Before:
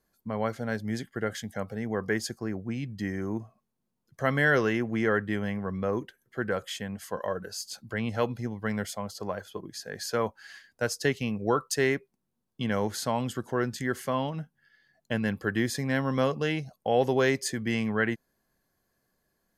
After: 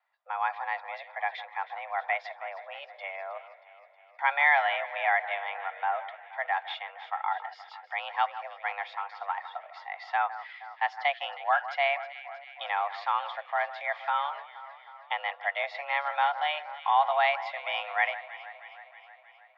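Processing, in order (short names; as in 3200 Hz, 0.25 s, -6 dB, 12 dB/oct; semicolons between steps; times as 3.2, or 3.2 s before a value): echo with dull and thin repeats by turns 0.158 s, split 1600 Hz, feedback 78%, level -13 dB; mistuned SSB +290 Hz 420–3300 Hz; gain +2 dB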